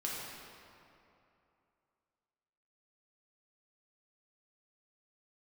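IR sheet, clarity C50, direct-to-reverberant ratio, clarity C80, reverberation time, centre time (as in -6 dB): -2.0 dB, -5.0 dB, 0.0 dB, 2.8 s, 0.139 s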